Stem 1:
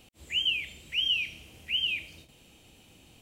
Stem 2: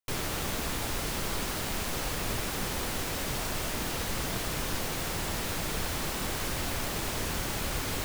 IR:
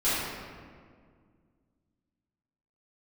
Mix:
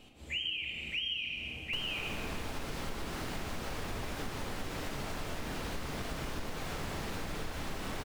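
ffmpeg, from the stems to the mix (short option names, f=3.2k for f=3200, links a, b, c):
-filter_complex "[0:a]volume=-1.5dB,asplit=2[a][b];[b]volume=-9.5dB[c];[1:a]adelay=1650,volume=-3dB,asplit=2[d][e];[e]volume=-17.5dB[f];[2:a]atrim=start_sample=2205[g];[c][f]amix=inputs=2:normalize=0[h];[h][g]afir=irnorm=-1:irlink=0[i];[a][d][i]amix=inputs=3:normalize=0,lowpass=f=3.4k:p=1,acompressor=threshold=-34dB:ratio=5"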